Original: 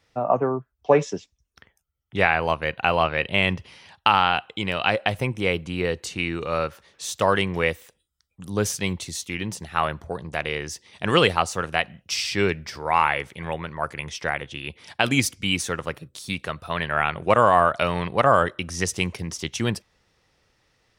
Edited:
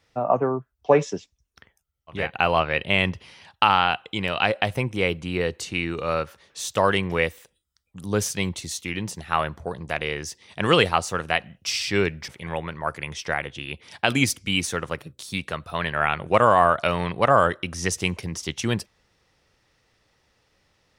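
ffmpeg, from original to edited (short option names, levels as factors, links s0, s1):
-filter_complex "[0:a]asplit=3[s0][s1][s2];[s0]atrim=end=2.31[s3];[s1]atrim=start=2.51:end=12.722[s4];[s2]atrim=start=13.238[s5];[s3][s4]acrossfade=d=0.24:c1=tri:c2=tri[s6];[s6][s5]acrossfade=d=0.004:c1=hsin:c2=hsin"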